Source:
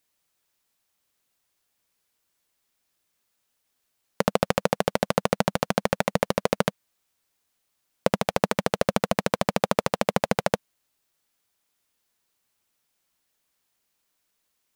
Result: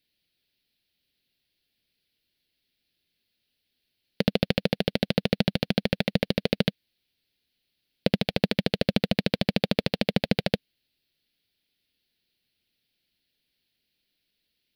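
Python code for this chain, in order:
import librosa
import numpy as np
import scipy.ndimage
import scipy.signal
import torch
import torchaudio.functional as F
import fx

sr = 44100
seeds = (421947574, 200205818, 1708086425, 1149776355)

y = fx.curve_eq(x, sr, hz=(270.0, 460.0, 750.0, 1100.0, 1600.0, 2800.0, 4400.0, 7000.0, 11000.0), db=(0, -5, -12, -22, -8, 1, 3, -23, -10))
y = F.gain(torch.from_numpy(y), 3.0).numpy()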